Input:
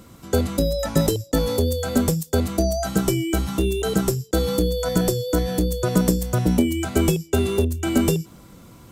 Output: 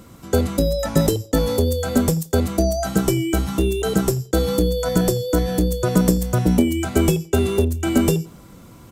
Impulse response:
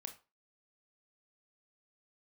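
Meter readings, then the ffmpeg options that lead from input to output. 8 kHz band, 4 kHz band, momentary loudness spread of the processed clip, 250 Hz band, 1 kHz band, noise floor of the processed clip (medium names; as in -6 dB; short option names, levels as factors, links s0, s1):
+1.0 dB, +0.5 dB, 3 LU, +2.0 dB, +2.0 dB, -44 dBFS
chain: -filter_complex "[0:a]asplit=2[s0][s1];[s1]adelay=86,lowpass=f=2800:p=1,volume=0.0794,asplit=2[s2][s3];[s3]adelay=86,lowpass=f=2800:p=1,volume=0.26[s4];[s0][s2][s4]amix=inputs=3:normalize=0,asplit=2[s5][s6];[1:a]atrim=start_sample=2205,lowpass=f=4400:w=0.5412,lowpass=f=4400:w=1.3066[s7];[s6][s7]afir=irnorm=-1:irlink=0,volume=0.251[s8];[s5][s8]amix=inputs=2:normalize=0,volume=1.12"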